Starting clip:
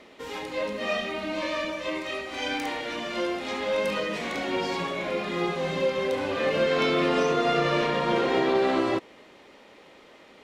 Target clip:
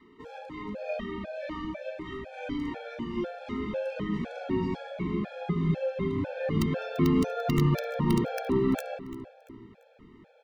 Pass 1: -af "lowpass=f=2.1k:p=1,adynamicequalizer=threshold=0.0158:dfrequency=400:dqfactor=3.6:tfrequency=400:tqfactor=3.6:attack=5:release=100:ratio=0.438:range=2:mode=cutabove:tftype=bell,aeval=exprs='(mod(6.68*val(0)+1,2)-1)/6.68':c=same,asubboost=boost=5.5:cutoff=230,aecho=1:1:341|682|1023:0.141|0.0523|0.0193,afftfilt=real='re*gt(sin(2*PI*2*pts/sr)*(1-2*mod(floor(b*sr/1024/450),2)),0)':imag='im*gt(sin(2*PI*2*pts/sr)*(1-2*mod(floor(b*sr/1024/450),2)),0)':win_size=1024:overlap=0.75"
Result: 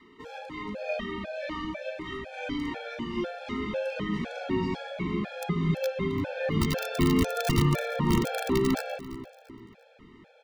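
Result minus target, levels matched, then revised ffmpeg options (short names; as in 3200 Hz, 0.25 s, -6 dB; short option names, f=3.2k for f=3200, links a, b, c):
2000 Hz band +4.5 dB
-af "lowpass=f=890:p=1,adynamicequalizer=threshold=0.0158:dfrequency=400:dqfactor=3.6:tfrequency=400:tqfactor=3.6:attack=5:release=100:ratio=0.438:range=2:mode=cutabove:tftype=bell,aeval=exprs='(mod(6.68*val(0)+1,2)-1)/6.68':c=same,asubboost=boost=5.5:cutoff=230,aecho=1:1:341|682|1023:0.141|0.0523|0.0193,afftfilt=real='re*gt(sin(2*PI*2*pts/sr)*(1-2*mod(floor(b*sr/1024/450),2)),0)':imag='im*gt(sin(2*PI*2*pts/sr)*(1-2*mod(floor(b*sr/1024/450),2)),0)':win_size=1024:overlap=0.75"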